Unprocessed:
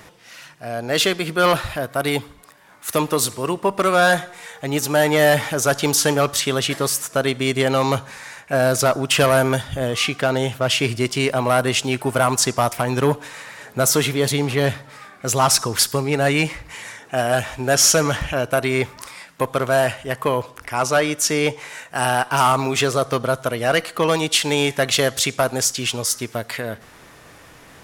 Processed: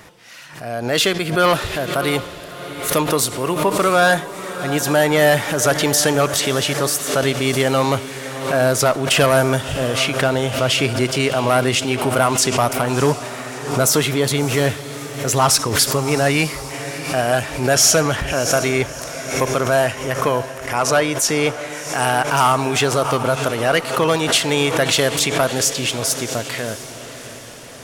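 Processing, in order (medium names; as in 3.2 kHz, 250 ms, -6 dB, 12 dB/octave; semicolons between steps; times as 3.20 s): echo that smears into a reverb 657 ms, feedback 56%, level -13 dB; swell ahead of each attack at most 81 dB/s; trim +1 dB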